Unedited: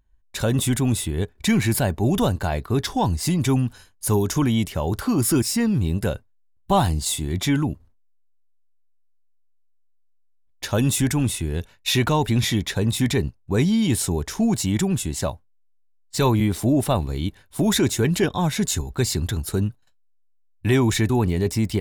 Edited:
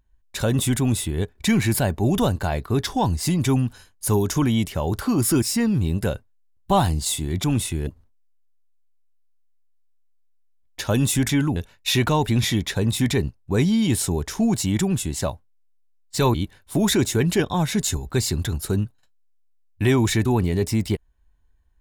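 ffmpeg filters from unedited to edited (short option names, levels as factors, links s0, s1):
-filter_complex "[0:a]asplit=6[s0][s1][s2][s3][s4][s5];[s0]atrim=end=7.442[s6];[s1]atrim=start=11.128:end=11.562[s7];[s2]atrim=start=7.708:end=11.132[s8];[s3]atrim=start=7.438:end=7.712[s9];[s4]atrim=start=11.558:end=16.342[s10];[s5]atrim=start=17.178[s11];[s6][s7]acrossfade=d=0.004:c1=hsin:c2=hsin[s12];[s12][s8]acrossfade=d=0.004:c1=hsin:c2=hsin[s13];[s13][s9]acrossfade=d=0.004:c1=hsin:c2=hsin[s14];[s14][s10]acrossfade=d=0.004:c1=hsin:c2=hsin[s15];[s15][s11]acrossfade=d=0.004:c1=hsin:c2=hsin"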